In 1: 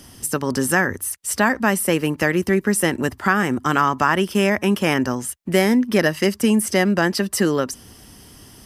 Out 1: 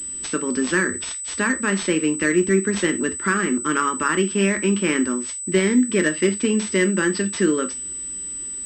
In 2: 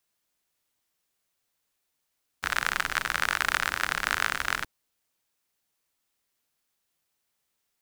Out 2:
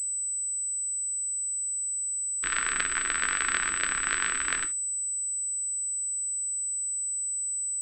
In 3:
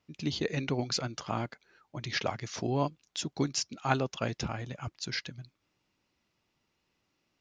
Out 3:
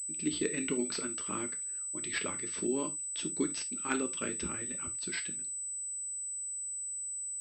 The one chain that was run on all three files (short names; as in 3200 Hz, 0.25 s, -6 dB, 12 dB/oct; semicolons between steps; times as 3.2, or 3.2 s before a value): fixed phaser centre 300 Hz, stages 4; non-linear reverb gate 0.1 s falling, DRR 6 dB; pulse-width modulation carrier 8000 Hz